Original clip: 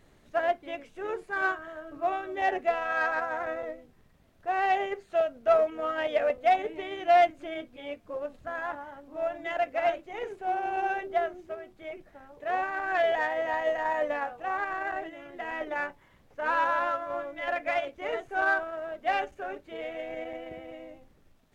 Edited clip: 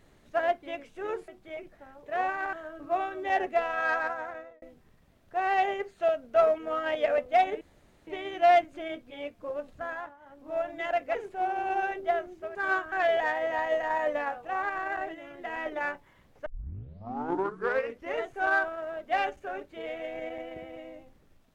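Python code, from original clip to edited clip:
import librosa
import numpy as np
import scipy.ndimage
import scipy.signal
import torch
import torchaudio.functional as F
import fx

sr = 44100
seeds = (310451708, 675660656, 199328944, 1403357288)

y = fx.edit(x, sr, fx.swap(start_s=1.28, length_s=0.37, other_s=11.62, other_length_s=1.25),
    fx.fade_out_span(start_s=3.09, length_s=0.65),
    fx.insert_room_tone(at_s=6.73, length_s=0.46),
    fx.fade_down_up(start_s=8.52, length_s=0.61, db=-15.0, fade_s=0.3),
    fx.cut(start_s=9.81, length_s=0.41),
    fx.tape_start(start_s=16.41, length_s=1.73), tone=tone)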